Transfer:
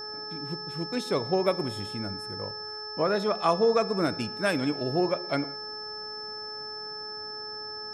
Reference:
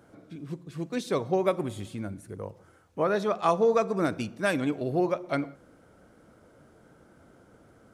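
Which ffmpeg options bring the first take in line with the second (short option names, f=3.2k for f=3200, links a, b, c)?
-af "bandreject=f=425.1:t=h:w=4,bandreject=f=850.2:t=h:w=4,bandreject=f=1.2753k:t=h:w=4,bandreject=f=1.7004k:t=h:w=4,bandreject=f=5.3k:w=30"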